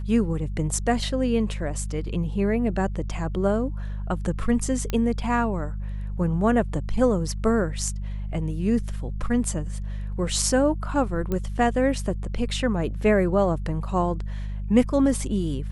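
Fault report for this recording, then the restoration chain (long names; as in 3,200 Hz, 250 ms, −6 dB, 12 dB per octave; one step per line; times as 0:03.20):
mains hum 50 Hz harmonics 4 −30 dBFS
0:04.90: click −13 dBFS
0:11.32: click −15 dBFS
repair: click removal
hum removal 50 Hz, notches 4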